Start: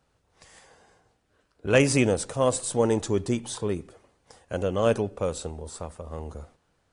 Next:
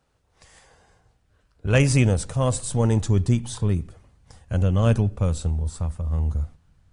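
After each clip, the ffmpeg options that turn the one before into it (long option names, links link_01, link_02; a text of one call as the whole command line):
ffmpeg -i in.wav -af "asubboost=boost=9.5:cutoff=140" out.wav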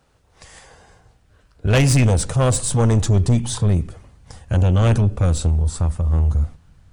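ffmpeg -i in.wav -af "asoftclip=type=tanh:threshold=-19dB,volume=8.5dB" out.wav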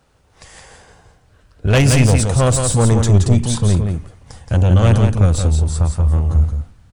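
ffmpeg -i in.wav -af "aecho=1:1:173:0.531,volume=2.5dB" out.wav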